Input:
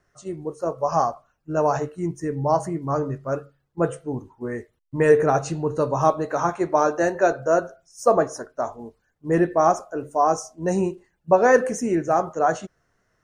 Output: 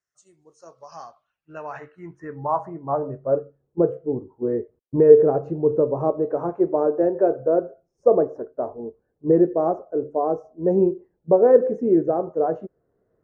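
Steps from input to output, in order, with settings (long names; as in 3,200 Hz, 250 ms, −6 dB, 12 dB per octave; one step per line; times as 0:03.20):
camcorder AGC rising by 5.9 dB per second
RIAA equalisation playback
band-pass filter sweep 7,600 Hz → 440 Hz, 0:00.31–0:03.53
level +2 dB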